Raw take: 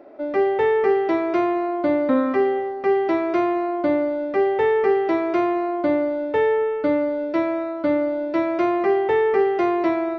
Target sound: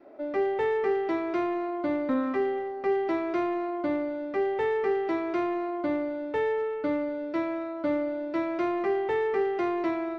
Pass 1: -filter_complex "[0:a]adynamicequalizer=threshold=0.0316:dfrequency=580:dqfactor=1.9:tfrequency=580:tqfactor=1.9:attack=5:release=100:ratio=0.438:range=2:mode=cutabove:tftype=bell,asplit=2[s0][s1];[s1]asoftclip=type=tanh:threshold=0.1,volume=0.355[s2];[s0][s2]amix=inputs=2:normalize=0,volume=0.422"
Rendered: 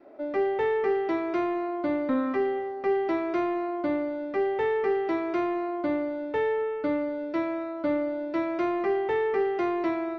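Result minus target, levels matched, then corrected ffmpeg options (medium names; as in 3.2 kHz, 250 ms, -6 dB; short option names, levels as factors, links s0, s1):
saturation: distortion -6 dB
-filter_complex "[0:a]adynamicequalizer=threshold=0.0316:dfrequency=580:dqfactor=1.9:tfrequency=580:tqfactor=1.9:attack=5:release=100:ratio=0.438:range=2:mode=cutabove:tftype=bell,asplit=2[s0][s1];[s1]asoftclip=type=tanh:threshold=0.0398,volume=0.355[s2];[s0][s2]amix=inputs=2:normalize=0,volume=0.422"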